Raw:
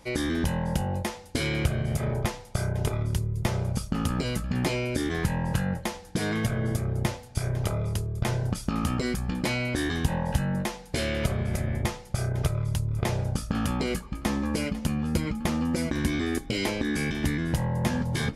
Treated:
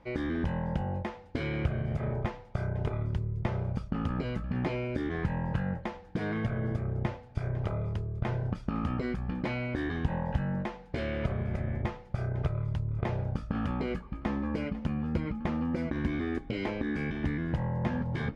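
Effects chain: low-pass 2.1 kHz 12 dB/octave; trim -4 dB

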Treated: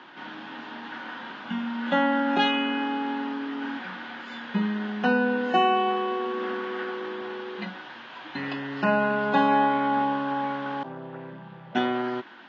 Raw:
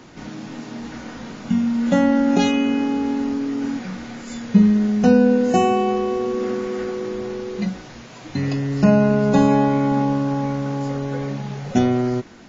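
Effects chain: 10.83–11.75 s: vocoder on a held chord major triad, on C3; cabinet simulation 430–3500 Hz, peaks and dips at 460 Hz -9 dB, 650 Hz -5 dB, 930 Hz +5 dB, 1.6 kHz +7 dB, 2.2 kHz -4 dB, 3.2 kHz +6 dB

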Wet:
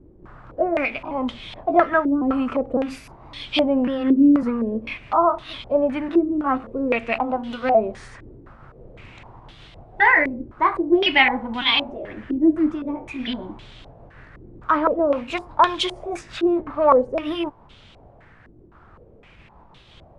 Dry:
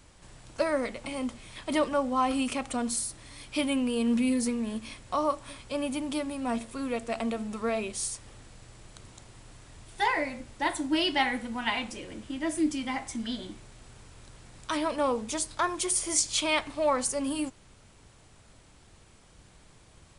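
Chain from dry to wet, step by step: pitch shift switched off and on +2 st, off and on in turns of 553 ms; step-sequenced low-pass 3.9 Hz 360–3400 Hz; trim +6 dB

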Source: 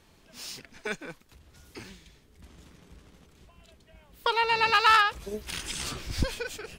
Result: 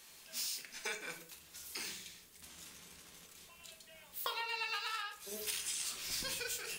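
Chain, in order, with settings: tilt EQ +4.5 dB/octave; compression 12:1, threshold -34 dBFS, peak gain reduction 22.5 dB; on a send: reverberation RT60 0.50 s, pre-delay 4 ms, DRR 2.5 dB; on the sum: trim -3.5 dB

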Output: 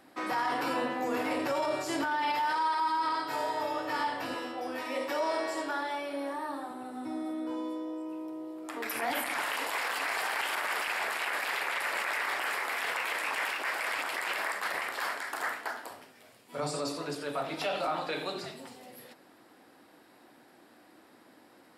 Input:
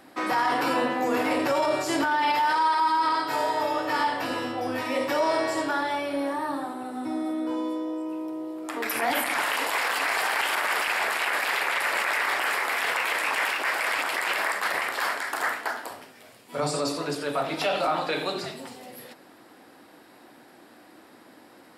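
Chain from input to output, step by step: 4.35–6.71 s: high-pass 250 Hz 12 dB/octave; trim -6.5 dB

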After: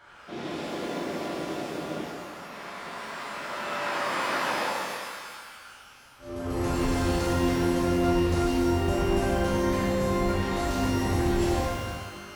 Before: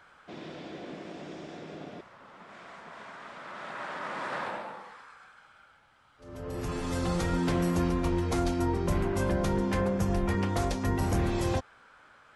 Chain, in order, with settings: peak limiter -27.5 dBFS, peak gain reduction 10.5 dB; pitch-shifted reverb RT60 1.6 s, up +12 st, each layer -8 dB, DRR -8 dB

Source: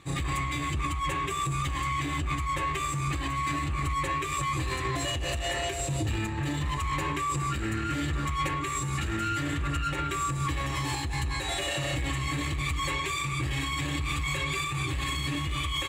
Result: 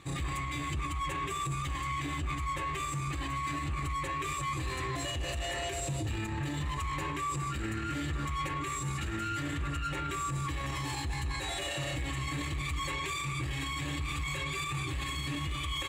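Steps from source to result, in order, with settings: peak limiter -26.5 dBFS, peak gain reduction 6.5 dB

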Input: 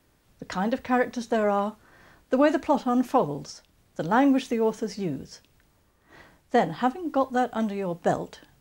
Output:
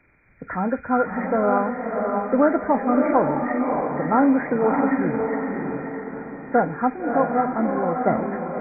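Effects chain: knee-point frequency compression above 1.3 kHz 4:1; echo that smears into a reverb 612 ms, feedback 47%, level -3 dB; trim +2.5 dB

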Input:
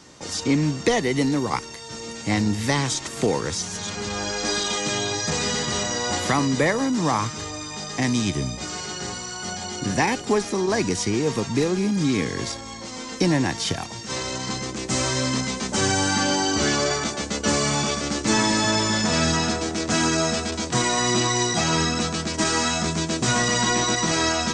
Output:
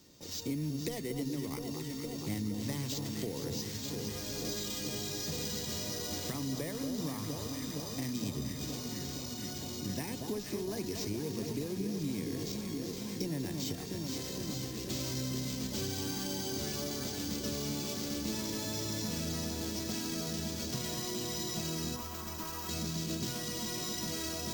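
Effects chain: band-stop 800 Hz, Q 12; echo whose repeats swap between lows and highs 233 ms, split 1.3 kHz, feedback 88%, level -7 dB; careless resampling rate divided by 4×, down none, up hold; 21.96–22.69 s: graphic EQ 125/250/500/1000/2000/4000/8000 Hz -12/-6/-8/+9/-4/-8/-6 dB; compression, threshold -21 dBFS, peak gain reduction 7 dB; peaking EQ 1.3 kHz -12.5 dB 2.3 oct; hum notches 60/120/180/240 Hz; trim -8.5 dB

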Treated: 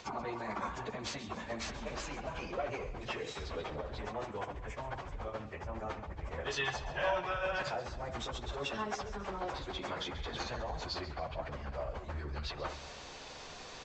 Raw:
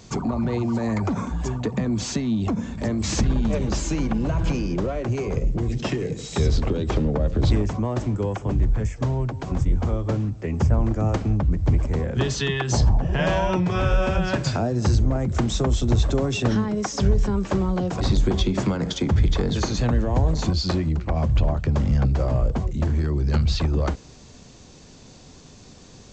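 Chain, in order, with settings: reverse; compression 5:1, threshold -34 dBFS, peak gain reduction 18.5 dB; reverse; three-band isolator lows -21 dB, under 530 Hz, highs -14 dB, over 4.2 kHz; doubling 14 ms -9 dB; on a send: echo whose repeats swap between lows and highs 127 ms, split 2.4 kHz, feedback 68%, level -10.5 dB; on the sum: plain phase-vocoder stretch 0.53×; bass shelf 69 Hz +9.5 dB; trim +9.5 dB

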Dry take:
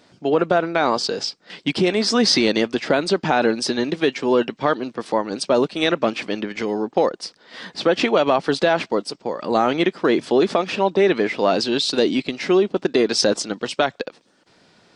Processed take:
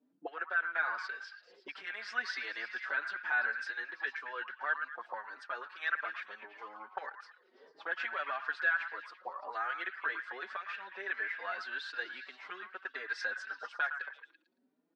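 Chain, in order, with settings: frequency weighting A; auto-wah 240–1600 Hz, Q 6.4, up, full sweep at -22.5 dBFS; on a send: repeats whose band climbs or falls 112 ms, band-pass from 1.3 kHz, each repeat 0.7 oct, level -7 dB; on the sum: endless flanger 4.7 ms +1.7 Hz

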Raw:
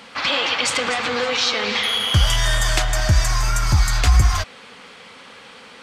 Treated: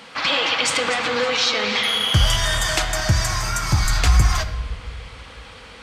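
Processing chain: 2.36–3.85 s: high-pass 63 Hz 12 dB/octave; simulated room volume 1700 m³, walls mixed, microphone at 0.61 m

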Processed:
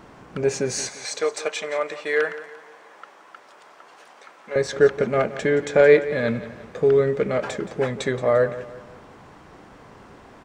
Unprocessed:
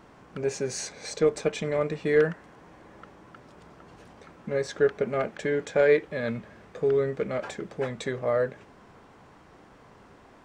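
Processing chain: 0.89–4.56 s: high-pass 700 Hz 12 dB/octave; feedback delay 173 ms, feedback 42%, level -15 dB; trim +6.5 dB

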